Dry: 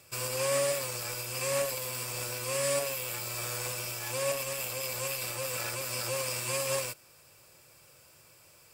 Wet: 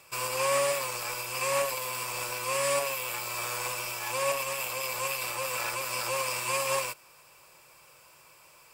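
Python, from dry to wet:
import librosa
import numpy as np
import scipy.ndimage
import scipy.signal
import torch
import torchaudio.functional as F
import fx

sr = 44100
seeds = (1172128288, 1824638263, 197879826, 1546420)

y = fx.graphic_eq_15(x, sr, hz=(100, 250, 1000, 2500), db=(-10, -3, 10, 5))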